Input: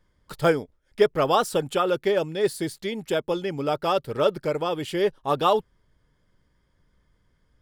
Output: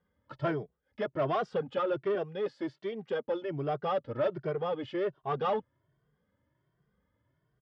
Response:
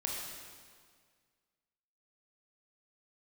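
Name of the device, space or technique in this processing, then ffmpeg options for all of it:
barber-pole flanger into a guitar amplifier: -filter_complex "[0:a]asplit=2[s0][s1];[s1]adelay=2.1,afreqshift=1.3[s2];[s0][s2]amix=inputs=2:normalize=1,asoftclip=type=tanh:threshold=0.075,highpass=100,equalizer=f=130:t=q:w=4:g=5,equalizer=f=600:t=q:w=4:g=3,equalizer=f=2400:t=q:w=4:g=-5,equalizer=f=4100:t=q:w=4:g=-8,lowpass=f=4500:w=0.5412,lowpass=f=4500:w=1.3066,aemphasis=mode=reproduction:type=50fm,asettb=1/sr,asplit=3[s3][s4][s5];[s3]atrim=end=2.154[s6];[s4]atrim=start=2.15:end=3.27,asetpts=PTS-STARTPTS,afade=t=in:d=0.004:c=qsin,afade=t=out:st=1.116:d=0.004:c=qsin,highpass=210[s7];[s5]atrim=start=3.266[s8];[s6][s7]acrossfade=d=0.004:c1=hsin:c2=qsin[s9];[s9][s8]acrossfade=d=0.004:c1=qsin:c2=hsin,volume=0.708"

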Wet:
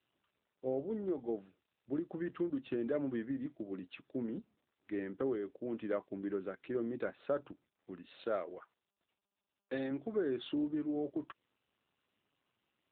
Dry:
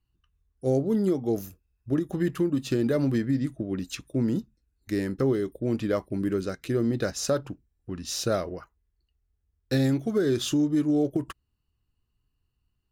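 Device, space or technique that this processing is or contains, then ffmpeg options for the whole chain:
telephone: -filter_complex "[0:a]asettb=1/sr,asplit=3[s0][s1][s2];[s0]atrim=end=8.194[s3];[s1]atrim=start=8.19:end=9.91,asetpts=PTS-STARTPTS,afade=t=in:d=0.004:c=qsin,afade=t=out:st=1.716:d=0.004:c=qsin,bass=f=250:g=-7,treble=f=4000:g=12[s4];[s2]atrim=start=9.906[s5];[s3][s4]acrossfade=d=0.004:c1=hsin:c2=qsin[s6];[s6][s5]acrossfade=d=0.004:c1=qsin:c2=hsin,highpass=280,lowpass=3000,volume=0.398" -ar 8000 -c:a libopencore_amrnb -b:a 10200

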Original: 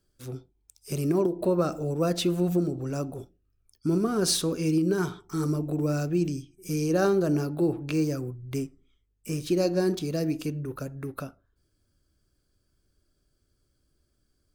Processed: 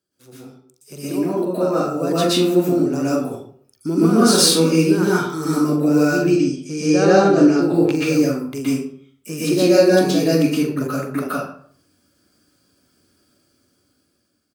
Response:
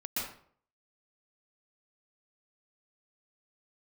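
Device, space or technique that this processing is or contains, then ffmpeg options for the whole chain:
far laptop microphone: -filter_complex "[0:a]asettb=1/sr,asplit=3[s0][s1][s2];[s0]atrim=end=6.194[s3];[s1]atrim=start=6.19:end=7.62,asetpts=PTS-STARTPTS,afade=t=in:d=0.004:c=qsin,afade=t=out:st=1.426:d=0.004:c=qsin,lowpass=f=7600:w=0.5412,lowpass=f=7600:w=1.3066[s4];[s2]atrim=start=7.616[s5];[s3][s4]acrossfade=d=0.004:c1=hsin:c2=qsin[s6];[s6][s5]acrossfade=d=0.004:c1=qsin:c2=hsin[s7];[1:a]atrim=start_sample=2205[s8];[s7][s8]afir=irnorm=-1:irlink=0,highpass=150,dynaudnorm=f=830:g=5:m=6.68,lowshelf=f=200:g=-4,asplit=2[s9][s10];[s10]adelay=43,volume=0.282[s11];[s9][s11]amix=inputs=2:normalize=0"

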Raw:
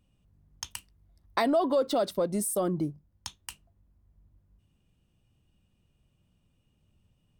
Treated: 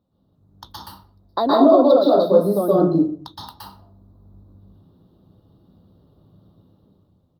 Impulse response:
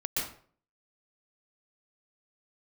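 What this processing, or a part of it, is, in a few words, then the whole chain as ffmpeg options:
far-field microphone of a smart speaker: -filter_complex "[0:a]firequalizer=gain_entry='entry(100,0);entry(260,5);entry(560,7);entry(1300,3);entry(2400,-30);entry(3800,6);entry(7400,-29);entry(12000,-6)':delay=0.05:min_phase=1[s0];[1:a]atrim=start_sample=2205[s1];[s0][s1]afir=irnorm=-1:irlink=0,highpass=92,dynaudnorm=f=100:g=13:m=3.55,volume=0.891" -ar 48000 -c:a libopus -b:a 48k

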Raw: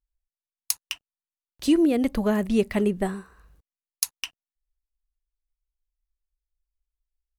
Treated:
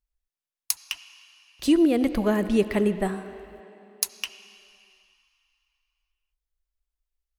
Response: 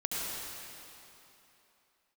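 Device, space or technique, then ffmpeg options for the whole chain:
filtered reverb send: -filter_complex "[0:a]asplit=2[s0][s1];[s1]highpass=300,lowpass=4500[s2];[1:a]atrim=start_sample=2205[s3];[s2][s3]afir=irnorm=-1:irlink=0,volume=0.168[s4];[s0][s4]amix=inputs=2:normalize=0"

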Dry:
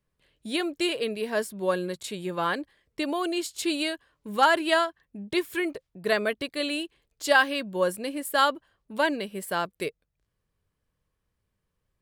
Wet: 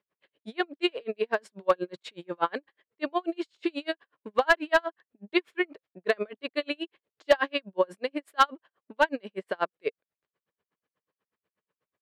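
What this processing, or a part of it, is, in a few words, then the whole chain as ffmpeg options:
helicopter radio: -af "highpass=320,lowpass=2800,aeval=exprs='val(0)*pow(10,-40*(0.5-0.5*cos(2*PI*8.2*n/s))/20)':c=same,asoftclip=type=hard:threshold=0.119,volume=2.24"

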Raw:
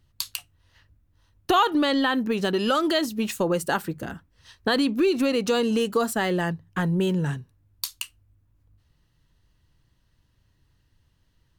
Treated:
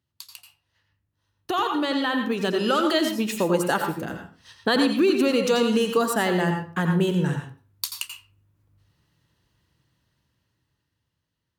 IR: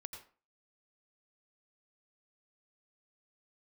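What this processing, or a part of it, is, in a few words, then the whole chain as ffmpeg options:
far laptop microphone: -filter_complex "[1:a]atrim=start_sample=2205[s0];[0:a][s0]afir=irnorm=-1:irlink=0,highpass=120,dynaudnorm=f=280:g=13:m=5.96,volume=0.473"

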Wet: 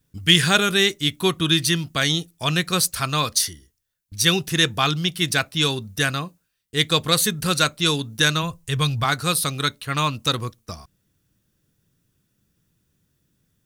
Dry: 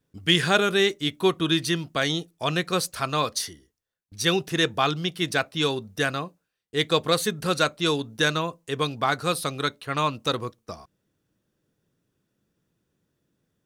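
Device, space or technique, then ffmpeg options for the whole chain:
smiley-face EQ: -filter_complex "[0:a]asplit=3[s0][s1][s2];[s0]afade=t=out:st=8.42:d=0.02[s3];[s1]asubboost=boost=8.5:cutoff=88,afade=t=in:st=8.42:d=0.02,afade=t=out:st=9.03:d=0.02[s4];[s2]afade=t=in:st=9.03:d=0.02[s5];[s3][s4][s5]amix=inputs=3:normalize=0,lowshelf=f=120:g=7,equalizer=f=520:t=o:w=2.3:g=-8,highshelf=f=7600:g=8,volume=1.88"

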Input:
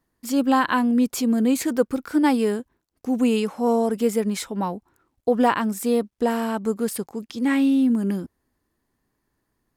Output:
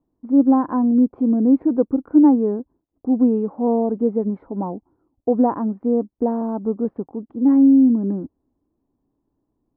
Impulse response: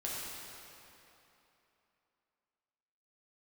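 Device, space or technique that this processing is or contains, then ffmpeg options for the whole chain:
under water: -filter_complex "[0:a]lowpass=f=920:w=0.5412,lowpass=f=920:w=1.3066,equalizer=f=290:t=o:w=0.47:g=8,asettb=1/sr,asplit=3[s0][s1][s2];[s0]atrim=end=6.414[s3];[s1]atrim=start=6.41:end=6.85,asetpts=PTS-STARTPTS,afade=t=in:d=0.004:c=qsin,afade=t=out:st=0.436:d=0.004:c=qsin,lowpass=f=1700:w=0.5412,lowpass=f=1700:w=1.3066[s4];[s2]atrim=start=6.846[s5];[s3][s4]acrossfade=d=0.004:c1=hsin:c2=qsin[s6];[s6][s5]acrossfade=d=0.004:c1=qsin:c2=hsin"

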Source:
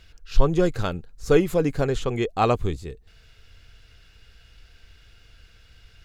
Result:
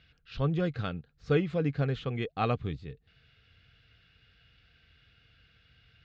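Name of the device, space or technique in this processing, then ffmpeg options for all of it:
guitar cabinet: -af "highpass=86,equalizer=f=140:t=q:w=4:g=6,equalizer=f=370:t=q:w=4:g=-8,equalizer=f=590:t=q:w=4:g=-5,equalizer=f=940:t=q:w=4:g=-10,lowpass=f=4000:w=0.5412,lowpass=f=4000:w=1.3066,volume=0.531"

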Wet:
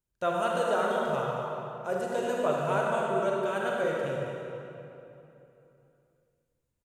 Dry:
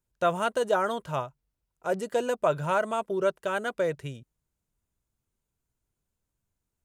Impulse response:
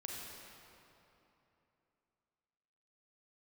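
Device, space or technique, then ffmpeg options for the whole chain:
cave: -filter_complex "[0:a]aecho=1:1:228:0.316[s0];[1:a]atrim=start_sample=2205[s1];[s0][s1]afir=irnorm=-1:irlink=0"

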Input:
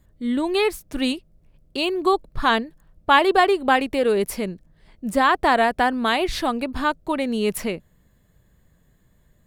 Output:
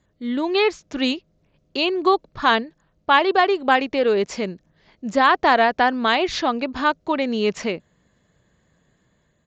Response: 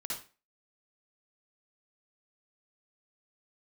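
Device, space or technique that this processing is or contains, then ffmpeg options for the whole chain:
Bluetooth headset: -filter_complex "[0:a]asettb=1/sr,asplit=3[s0][s1][s2];[s0]atrim=end=4.284[s3];[s1]atrim=start=4.28:end=6.05,asetpts=PTS-STARTPTS,afade=t=in:d=0.004:c=qsin,afade=t=out:st=1.766:d=0.004:c=qsin,highshelf=f=7000:g=3[s4];[s2]atrim=start=6.046[s5];[s3][s4]acrossfade=d=0.004:c1=hsin:c2=qsin[s6];[s6][s5]acrossfade=d=0.004:c1=qsin:c2=hsin,highpass=f=220:p=1,dynaudnorm=f=170:g=5:m=1.41,aresample=16000,aresample=44100" -ar 16000 -c:a sbc -b:a 64k

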